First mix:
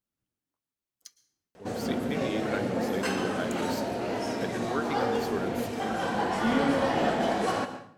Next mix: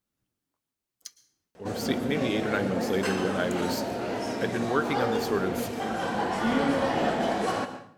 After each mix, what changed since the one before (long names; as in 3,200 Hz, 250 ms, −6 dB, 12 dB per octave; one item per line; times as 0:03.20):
speech +6.0 dB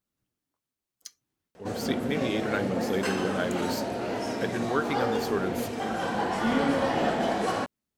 speech: send off